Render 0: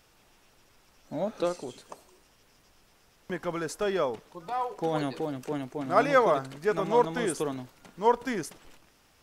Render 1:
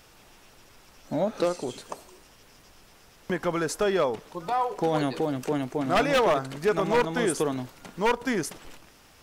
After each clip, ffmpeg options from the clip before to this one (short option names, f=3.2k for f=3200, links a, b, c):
-filter_complex "[0:a]asplit=2[a][b];[b]acompressor=threshold=-33dB:ratio=6,volume=3dB[c];[a][c]amix=inputs=2:normalize=0,aeval=exprs='0.178*(abs(mod(val(0)/0.178+3,4)-2)-1)':c=same"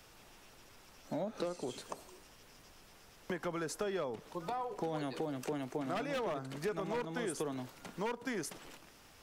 -filter_complex "[0:a]acrossover=split=110|350[a][b][c];[a]acompressor=threshold=-56dB:ratio=4[d];[b]acompressor=threshold=-38dB:ratio=4[e];[c]acompressor=threshold=-34dB:ratio=4[f];[d][e][f]amix=inputs=3:normalize=0,volume=-4.5dB"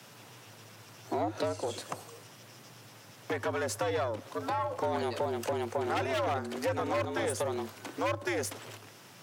-af "aeval=exprs='0.0631*(cos(1*acos(clip(val(0)/0.0631,-1,1)))-cos(1*PI/2))+0.0112*(cos(4*acos(clip(val(0)/0.0631,-1,1)))-cos(4*PI/2))+0.00447*(cos(5*acos(clip(val(0)/0.0631,-1,1)))-cos(5*PI/2))':c=same,afreqshift=100,volume=4dB"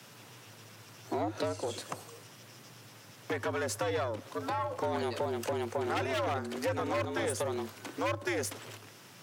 -af "equalizer=f=730:w=1.5:g=-2.5"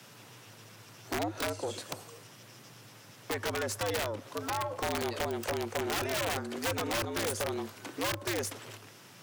-af "aeval=exprs='(mod(17.8*val(0)+1,2)-1)/17.8':c=same"